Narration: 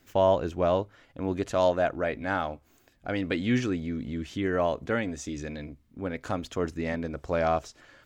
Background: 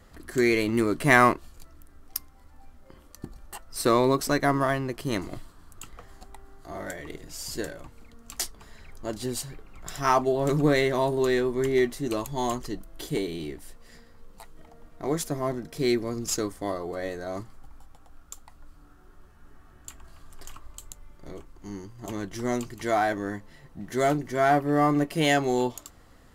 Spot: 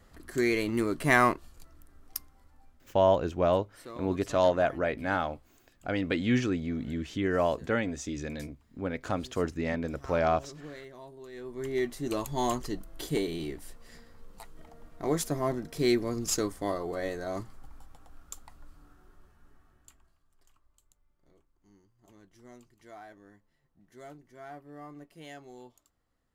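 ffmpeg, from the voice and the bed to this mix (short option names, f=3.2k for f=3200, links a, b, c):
-filter_complex "[0:a]adelay=2800,volume=-0.5dB[a];[1:a]volume=17.5dB,afade=t=out:st=2.2:d=0.98:silence=0.11885,afade=t=in:st=11.32:d=1.04:silence=0.0794328,afade=t=out:st=18.49:d=1.69:silence=0.0707946[b];[a][b]amix=inputs=2:normalize=0"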